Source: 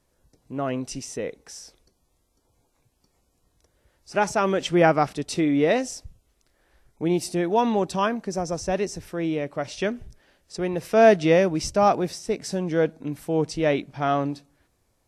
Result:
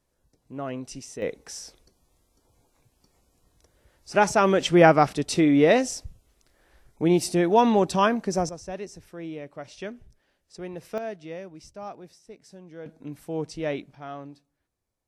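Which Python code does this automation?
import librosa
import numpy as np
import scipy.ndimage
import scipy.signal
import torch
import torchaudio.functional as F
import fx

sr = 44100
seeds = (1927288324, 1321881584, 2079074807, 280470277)

y = fx.gain(x, sr, db=fx.steps((0.0, -5.5), (1.22, 2.5), (8.49, -10.0), (10.98, -19.5), (12.86, -7.0), (13.95, -15.0)))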